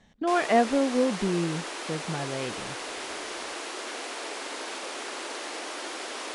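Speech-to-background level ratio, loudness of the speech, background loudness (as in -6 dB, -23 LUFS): 7.5 dB, -27.5 LUFS, -35.0 LUFS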